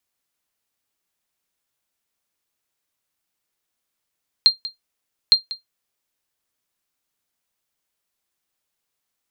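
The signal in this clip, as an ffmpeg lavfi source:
-f lavfi -i "aevalsrc='0.668*(sin(2*PI*4190*mod(t,0.86))*exp(-6.91*mod(t,0.86)/0.14)+0.141*sin(2*PI*4190*max(mod(t,0.86)-0.19,0))*exp(-6.91*max(mod(t,0.86)-0.19,0)/0.14))':d=1.72:s=44100"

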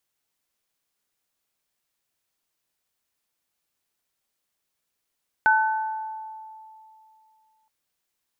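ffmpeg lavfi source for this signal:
-f lavfi -i "aevalsrc='0.141*pow(10,-3*t/2.7)*sin(2*PI*876*t)+0.178*pow(10,-3*t/1)*sin(2*PI*1510*t)':d=2.22:s=44100"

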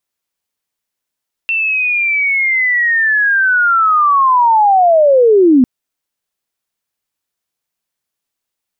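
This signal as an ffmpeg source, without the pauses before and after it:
-f lavfi -i "aevalsrc='pow(10,(-12.5+8*t/4.15)/20)*sin(2*PI*(2700*t-2460*t*t/(2*4.15)))':d=4.15:s=44100"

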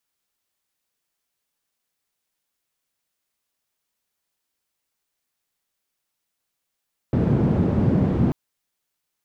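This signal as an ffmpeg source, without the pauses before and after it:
-f lavfi -i "anoisesrc=c=white:d=1.19:r=44100:seed=1,highpass=f=120,lowpass=f=160,volume=11.1dB"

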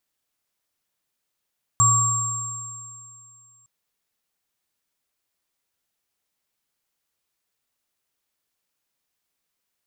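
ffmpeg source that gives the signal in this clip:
-f lavfi -i "aevalsrc='0.106*pow(10,-3*t/2.28)*sin(2*PI*118*t)+0.133*pow(10,-3*t/2.08)*sin(2*PI*1140*t)+0.178*pow(10,-3*t/2.77)*sin(2*PI*7470*t)':d=1.86:s=44100"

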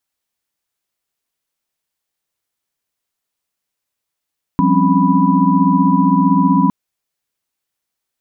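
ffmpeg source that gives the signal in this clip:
-f lavfi -i "aevalsrc='0.158*(sin(2*PI*174.61*t)+sin(2*PI*196*t)+sin(2*PI*261.63*t)+sin(2*PI*277.18*t)+sin(2*PI*987.77*t))':d=2.11:s=44100"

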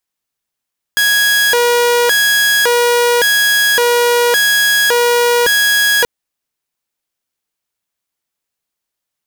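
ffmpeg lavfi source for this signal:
-f lavfi -i "aevalsrc='0.447*(2*mod((1070*t+590/0.89*(0.5-abs(mod(0.89*t,1)-0.5))),1)-1)':d=5.08:s=44100"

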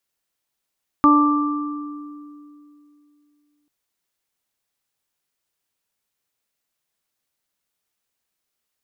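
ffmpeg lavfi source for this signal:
-f lavfi -i "aevalsrc='0.251*pow(10,-3*t/2.87)*sin(2*PI*294*t)+0.0355*pow(10,-3*t/0.95)*sin(2*PI*588*t)+0.0841*pow(10,-3*t/1.31)*sin(2*PI*882*t)+0.282*pow(10,-3*t/1.89)*sin(2*PI*1176*t)':d=2.64:s=44100"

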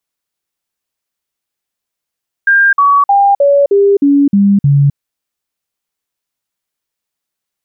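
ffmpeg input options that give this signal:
-f lavfi -i "aevalsrc='0.562*clip(min(mod(t,0.31),0.26-mod(t,0.31))/0.005,0,1)*sin(2*PI*1600*pow(2,-floor(t/0.31)/2)*mod(t,0.31))':d=2.48:s=44100"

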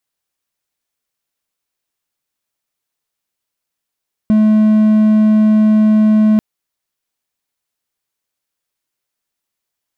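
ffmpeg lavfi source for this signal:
-f lavfi -i "aevalsrc='0.562*(1-4*abs(mod(215*t+0.25,1)-0.5))':d=2.09:s=44100"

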